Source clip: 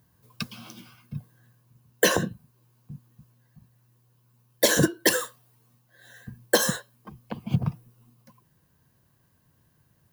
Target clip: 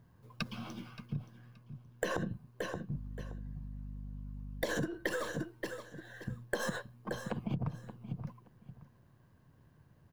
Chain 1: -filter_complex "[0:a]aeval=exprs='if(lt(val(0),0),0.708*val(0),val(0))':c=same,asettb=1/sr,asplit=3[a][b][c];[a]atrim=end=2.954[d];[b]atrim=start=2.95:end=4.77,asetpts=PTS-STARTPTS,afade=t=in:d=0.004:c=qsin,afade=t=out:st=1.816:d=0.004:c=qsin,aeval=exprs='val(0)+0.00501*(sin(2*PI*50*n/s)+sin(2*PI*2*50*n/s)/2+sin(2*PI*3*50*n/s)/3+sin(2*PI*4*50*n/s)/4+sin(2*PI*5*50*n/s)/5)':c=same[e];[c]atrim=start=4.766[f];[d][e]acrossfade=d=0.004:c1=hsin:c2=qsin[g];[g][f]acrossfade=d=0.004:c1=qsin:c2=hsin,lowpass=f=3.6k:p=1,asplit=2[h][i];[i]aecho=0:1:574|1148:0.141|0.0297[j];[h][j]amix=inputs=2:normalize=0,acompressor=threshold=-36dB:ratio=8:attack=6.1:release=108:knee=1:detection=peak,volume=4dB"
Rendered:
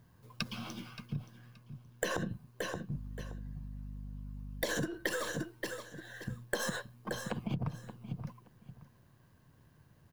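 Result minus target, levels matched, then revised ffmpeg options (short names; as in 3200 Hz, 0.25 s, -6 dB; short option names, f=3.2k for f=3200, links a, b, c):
4000 Hz band +3.5 dB
-filter_complex "[0:a]aeval=exprs='if(lt(val(0),0),0.708*val(0),val(0))':c=same,asettb=1/sr,asplit=3[a][b][c];[a]atrim=end=2.954[d];[b]atrim=start=2.95:end=4.77,asetpts=PTS-STARTPTS,afade=t=in:d=0.004:c=qsin,afade=t=out:st=1.816:d=0.004:c=qsin,aeval=exprs='val(0)+0.00501*(sin(2*PI*50*n/s)+sin(2*PI*2*50*n/s)/2+sin(2*PI*3*50*n/s)/3+sin(2*PI*4*50*n/s)/4+sin(2*PI*5*50*n/s)/5)':c=same[e];[c]atrim=start=4.766[f];[d][e]acrossfade=d=0.004:c1=hsin:c2=qsin[g];[g][f]acrossfade=d=0.004:c1=qsin:c2=hsin,lowpass=f=1.5k:p=1,asplit=2[h][i];[i]aecho=0:1:574|1148:0.141|0.0297[j];[h][j]amix=inputs=2:normalize=0,acompressor=threshold=-36dB:ratio=8:attack=6.1:release=108:knee=1:detection=peak,volume=4dB"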